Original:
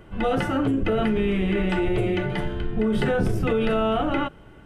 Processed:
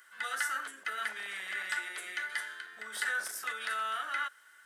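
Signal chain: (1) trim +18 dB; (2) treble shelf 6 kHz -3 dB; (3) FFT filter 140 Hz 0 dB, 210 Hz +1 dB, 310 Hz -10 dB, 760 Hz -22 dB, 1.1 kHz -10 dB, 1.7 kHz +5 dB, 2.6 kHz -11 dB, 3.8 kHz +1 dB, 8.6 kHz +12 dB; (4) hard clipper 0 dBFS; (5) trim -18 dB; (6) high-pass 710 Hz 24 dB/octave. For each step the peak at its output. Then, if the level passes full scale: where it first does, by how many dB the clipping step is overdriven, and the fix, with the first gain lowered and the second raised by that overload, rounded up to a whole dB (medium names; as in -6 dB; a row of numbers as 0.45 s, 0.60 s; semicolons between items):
+6.5 dBFS, +6.5 dBFS, +5.0 dBFS, 0.0 dBFS, -18.0 dBFS, -19.5 dBFS; step 1, 5.0 dB; step 1 +13 dB, step 5 -13 dB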